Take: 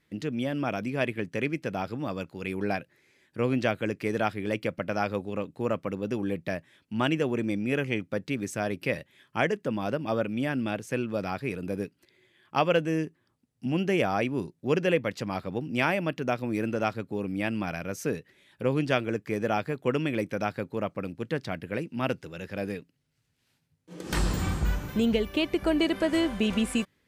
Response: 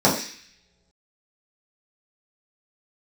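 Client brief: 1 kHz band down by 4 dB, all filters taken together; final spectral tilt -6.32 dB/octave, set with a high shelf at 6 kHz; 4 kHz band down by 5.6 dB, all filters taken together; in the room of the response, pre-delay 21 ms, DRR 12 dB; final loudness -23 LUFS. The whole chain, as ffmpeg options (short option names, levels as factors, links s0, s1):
-filter_complex "[0:a]equalizer=f=1000:t=o:g=-5.5,equalizer=f=4000:t=o:g=-5.5,highshelf=f=6000:g=-8,asplit=2[s0][s1];[1:a]atrim=start_sample=2205,adelay=21[s2];[s1][s2]afir=irnorm=-1:irlink=0,volume=0.0237[s3];[s0][s3]amix=inputs=2:normalize=0,volume=2.24"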